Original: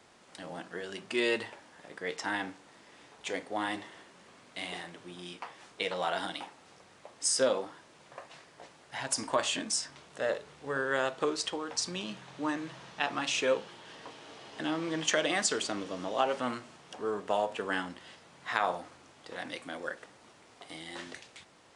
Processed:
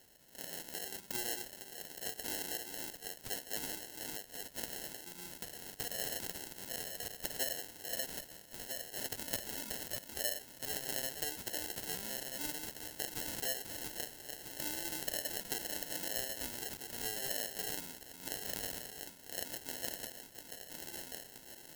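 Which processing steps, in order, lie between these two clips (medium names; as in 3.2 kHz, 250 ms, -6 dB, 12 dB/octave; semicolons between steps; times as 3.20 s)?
backward echo that repeats 644 ms, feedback 45%, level -7 dB; low-pass that closes with the level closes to 2.8 kHz, closed at -25.5 dBFS; compression, threshold -33 dBFS, peak gain reduction 11 dB; sample-and-hold 37×; pre-emphasis filter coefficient 0.9; trim +8.5 dB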